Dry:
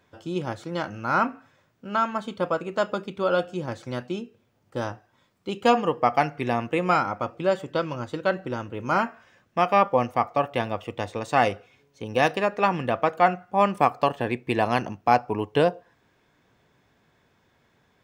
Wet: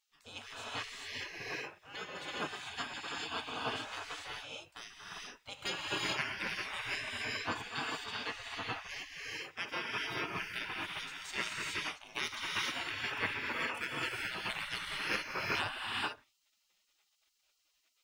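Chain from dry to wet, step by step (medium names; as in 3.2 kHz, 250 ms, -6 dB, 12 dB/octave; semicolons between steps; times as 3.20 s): gated-style reverb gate 460 ms rising, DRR -4.5 dB; spectral gate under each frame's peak -20 dB weak; trim -4 dB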